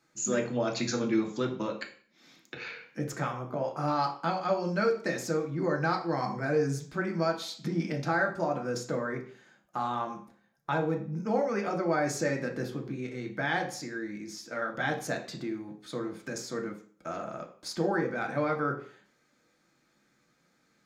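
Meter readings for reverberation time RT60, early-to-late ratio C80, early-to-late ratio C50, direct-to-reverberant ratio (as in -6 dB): 0.50 s, 14.0 dB, 10.0 dB, 1.5 dB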